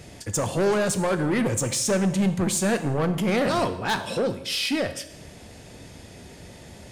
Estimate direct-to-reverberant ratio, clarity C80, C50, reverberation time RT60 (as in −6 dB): 9.0 dB, 14.5 dB, 12.0 dB, 0.90 s